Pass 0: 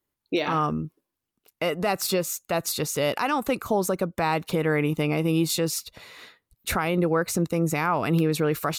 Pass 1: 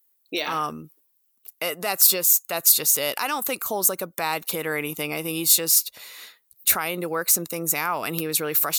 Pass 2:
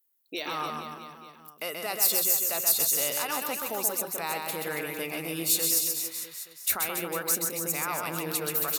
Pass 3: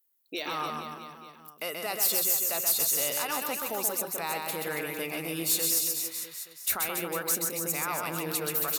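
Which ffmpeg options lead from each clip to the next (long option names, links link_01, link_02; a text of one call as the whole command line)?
ffmpeg -i in.wav -af "aemphasis=mode=production:type=riaa,volume=-1.5dB" out.wav
ffmpeg -i in.wav -af "bandreject=frequency=60:width_type=h:width=6,bandreject=frequency=120:width_type=h:width=6,bandreject=frequency=180:width_type=h:width=6,aecho=1:1:130|279.5|451.4|649.1|876.5:0.631|0.398|0.251|0.158|0.1,volume=-7.5dB" out.wav
ffmpeg -i in.wav -af "asoftclip=type=tanh:threshold=-17.5dB" out.wav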